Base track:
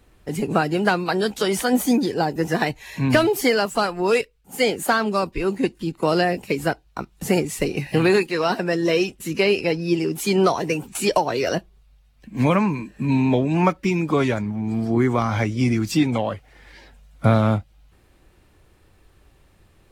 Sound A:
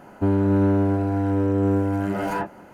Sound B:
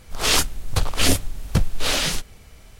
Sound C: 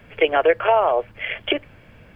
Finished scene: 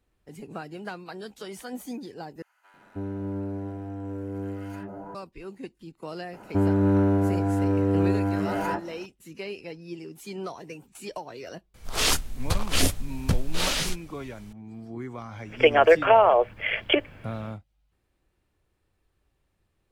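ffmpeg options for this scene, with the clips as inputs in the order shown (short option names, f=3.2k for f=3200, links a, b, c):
-filter_complex "[1:a]asplit=2[a][b];[0:a]volume=-17.5dB[c];[a]acrossover=split=1200[d][e];[d]adelay=320[f];[f][e]amix=inputs=2:normalize=0[g];[c]asplit=2[h][i];[h]atrim=end=2.424[j];[g]atrim=end=2.73,asetpts=PTS-STARTPTS,volume=-13dB[k];[i]atrim=start=5.146[l];[b]atrim=end=2.73,asetpts=PTS-STARTPTS,volume=-2dB,afade=t=in:d=0.004:c=hsin,afade=t=out:st=2.726:d=0.004:c=hsin,adelay=6330[m];[2:a]atrim=end=2.79,asetpts=PTS-STARTPTS,volume=-4.5dB,afade=t=in:d=0.004:c=hsin,afade=t=out:st=2.786:d=0.004:c=hsin,adelay=11740[n];[3:a]atrim=end=2.15,asetpts=PTS-STARTPTS,afade=t=in:d=0.1,afade=t=out:st=2.05:d=0.1,adelay=15420[o];[j][k]acrossfade=d=0.004:c1=hsin:c2=hsin[p];[p][l]acrossfade=d=0.004:c1=hsin:c2=hsin[q];[q][m][n][o]amix=inputs=4:normalize=0"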